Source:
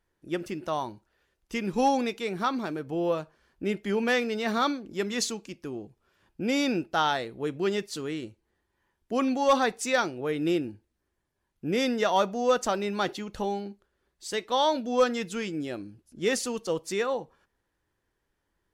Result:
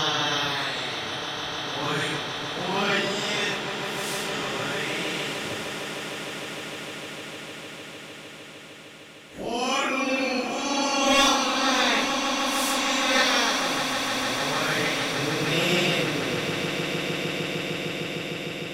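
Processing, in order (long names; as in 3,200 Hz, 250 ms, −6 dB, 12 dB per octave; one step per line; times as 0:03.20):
ceiling on every frequency bin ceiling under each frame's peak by 21 dB
extreme stretch with random phases 4.5×, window 0.05 s, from 0:07.02
echo that builds up and dies away 152 ms, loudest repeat 8, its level −12.5 dB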